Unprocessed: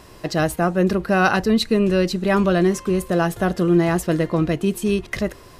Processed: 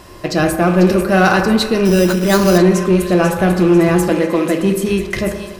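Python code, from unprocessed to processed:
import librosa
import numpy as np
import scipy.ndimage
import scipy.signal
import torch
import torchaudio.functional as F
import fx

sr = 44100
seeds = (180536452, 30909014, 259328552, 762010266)

p1 = fx.rattle_buzz(x, sr, strikes_db=-32.0, level_db=-28.0)
p2 = fx.high_shelf(p1, sr, hz=9200.0, db=8.0, at=(0.67, 1.35))
p3 = fx.highpass(p2, sr, hz=200.0, slope=24, at=(4.09, 4.6))
p4 = p3 + fx.echo_wet_highpass(p3, sr, ms=494, feedback_pct=45, hz=3000.0, wet_db=-7.0, dry=0)
p5 = fx.rev_fdn(p4, sr, rt60_s=1.3, lf_ratio=0.85, hf_ratio=0.3, size_ms=17.0, drr_db=3.5)
p6 = fx.resample_bad(p5, sr, factor=8, down='none', up='hold', at=(1.85, 2.58))
p7 = np.clip(p6, -10.0 ** (-14.0 / 20.0), 10.0 ** (-14.0 / 20.0))
y = p6 + (p7 * 10.0 ** (-3.0 / 20.0))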